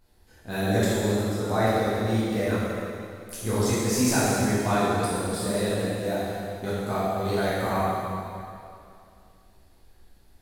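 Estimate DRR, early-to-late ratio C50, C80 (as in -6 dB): -10.5 dB, -4.0 dB, -2.0 dB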